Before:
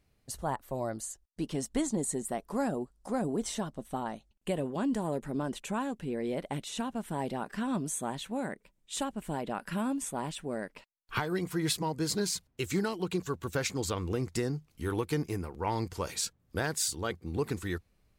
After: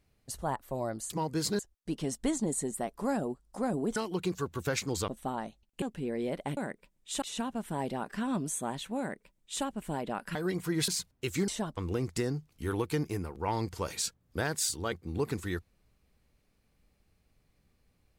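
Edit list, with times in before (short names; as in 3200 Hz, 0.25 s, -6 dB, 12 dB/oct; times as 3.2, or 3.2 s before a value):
3.47–3.76 swap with 12.84–13.96
4.5–5.87 cut
8.39–9.04 copy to 6.62
9.75–11.22 cut
11.75–12.24 move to 1.1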